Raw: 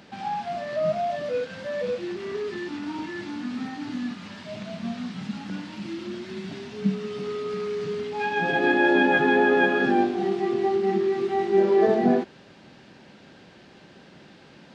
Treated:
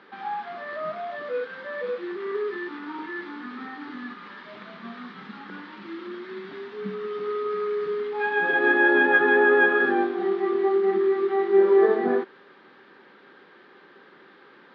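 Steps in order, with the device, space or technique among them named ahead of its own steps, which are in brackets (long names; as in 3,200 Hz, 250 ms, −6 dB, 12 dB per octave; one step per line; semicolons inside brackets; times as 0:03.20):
phone earpiece (loudspeaker in its box 380–3,500 Hz, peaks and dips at 400 Hz +6 dB, 650 Hz −10 dB, 1,200 Hz +8 dB, 1,700 Hz +4 dB, 2,700 Hz −8 dB)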